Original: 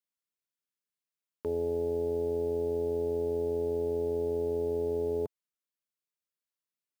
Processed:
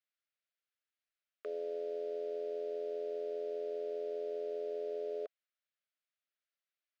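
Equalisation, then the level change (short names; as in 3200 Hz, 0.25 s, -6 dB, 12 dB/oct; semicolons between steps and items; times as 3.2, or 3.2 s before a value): Chebyshev high-pass 660 Hz, order 3; Butterworth band-stop 900 Hz, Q 1.5; air absorption 240 m; +6.5 dB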